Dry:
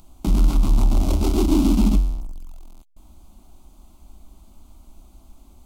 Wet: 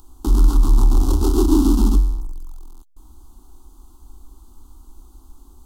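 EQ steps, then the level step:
phaser with its sweep stopped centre 620 Hz, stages 6
+4.0 dB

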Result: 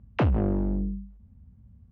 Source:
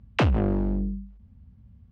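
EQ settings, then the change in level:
low-pass filter 1,200 Hz 6 dB per octave
−1.0 dB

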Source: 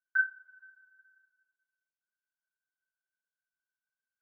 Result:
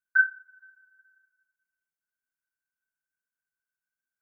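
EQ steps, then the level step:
notch filter 1,100 Hz
dynamic equaliser 1,300 Hz, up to +7 dB, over −41 dBFS, Q 1.8
phaser with its sweep stopped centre 1,500 Hz, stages 4
+1.5 dB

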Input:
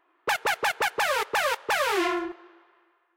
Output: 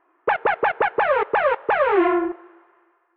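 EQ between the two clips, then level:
Bessel low-pass filter 1,600 Hz, order 6
dynamic equaliser 480 Hz, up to +5 dB, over −40 dBFS, Q 0.88
+5.5 dB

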